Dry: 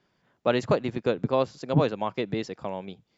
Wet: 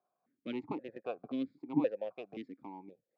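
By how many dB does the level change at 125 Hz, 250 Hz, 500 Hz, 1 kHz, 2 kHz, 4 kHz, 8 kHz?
-21.0 dB, -7.0 dB, -13.5 dB, -15.5 dB, -16.0 dB, -17.5 dB, no reading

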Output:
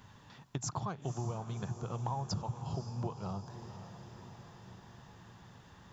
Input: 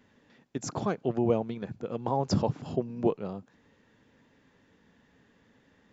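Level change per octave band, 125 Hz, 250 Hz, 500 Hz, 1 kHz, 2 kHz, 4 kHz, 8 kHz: -2.0 dB, -11.5 dB, -14.5 dB, -5.5 dB, -6.0 dB, -3.5 dB, no reading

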